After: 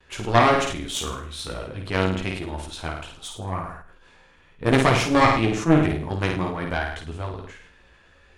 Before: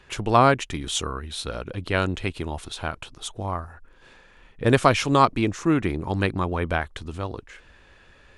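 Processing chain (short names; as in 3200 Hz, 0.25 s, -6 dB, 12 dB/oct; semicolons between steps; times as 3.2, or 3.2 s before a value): gate with hold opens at -47 dBFS; chorus voices 4, 0.24 Hz, delay 15 ms, depth 4.2 ms; added harmonics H 4 -10 dB, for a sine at -5.5 dBFS; on a send: flutter echo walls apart 9.1 m, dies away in 0.51 s; on the sum: sustainer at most 63 dB/s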